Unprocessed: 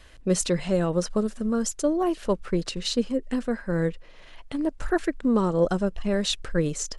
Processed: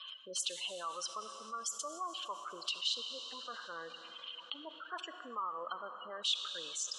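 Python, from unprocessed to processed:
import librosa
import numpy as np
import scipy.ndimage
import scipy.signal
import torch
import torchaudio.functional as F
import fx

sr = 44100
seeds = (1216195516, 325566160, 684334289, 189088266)

y = fx.spec_gate(x, sr, threshold_db=-25, keep='strong')
y = fx.double_bandpass(y, sr, hz=1900.0, octaves=1.4)
y = np.diff(y, prepend=0.0)
y = fx.rev_plate(y, sr, seeds[0], rt60_s=4.4, hf_ratio=0.6, predelay_ms=0, drr_db=13.5)
y = fx.env_flatten(y, sr, amount_pct=50)
y = y * 10.0 ** (8.5 / 20.0)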